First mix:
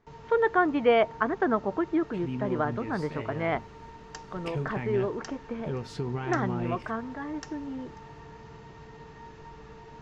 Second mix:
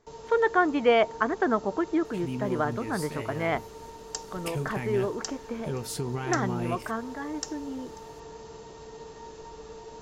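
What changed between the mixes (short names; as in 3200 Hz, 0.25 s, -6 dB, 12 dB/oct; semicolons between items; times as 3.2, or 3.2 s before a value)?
first sound: add ten-band EQ 125 Hz -7 dB, 500 Hz +8 dB, 2000 Hz -6 dB, 4000 Hz +3 dB; master: remove air absorption 170 m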